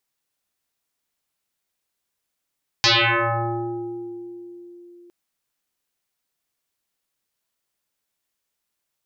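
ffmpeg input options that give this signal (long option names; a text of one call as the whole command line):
ffmpeg -f lavfi -i "aevalsrc='0.237*pow(10,-3*t/4.12)*sin(2*PI*349*t+12*pow(10,-3*t/2.05)*sin(2*PI*1.33*349*t))':duration=2.26:sample_rate=44100" out.wav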